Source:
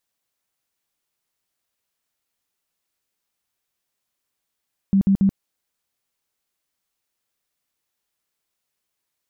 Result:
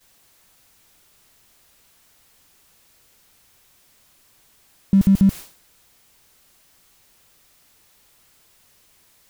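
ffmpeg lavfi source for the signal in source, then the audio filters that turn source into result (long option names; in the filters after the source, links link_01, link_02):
-f lavfi -i "aevalsrc='0.237*sin(2*PI*195*mod(t,0.14))*lt(mod(t,0.14),16/195)':duration=0.42:sample_rate=44100"
-af "aeval=exprs='val(0)+0.5*0.0282*sgn(val(0))':channel_layout=same,agate=range=-33dB:threshold=-27dB:ratio=3:detection=peak,lowshelf=frequency=130:gain=8.5"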